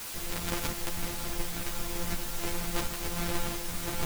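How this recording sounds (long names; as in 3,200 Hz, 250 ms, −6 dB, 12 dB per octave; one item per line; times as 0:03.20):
a buzz of ramps at a fixed pitch in blocks of 256 samples
tremolo saw up 1.4 Hz, depth 55%
a quantiser's noise floor 6 bits, dither triangular
a shimmering, thickened sound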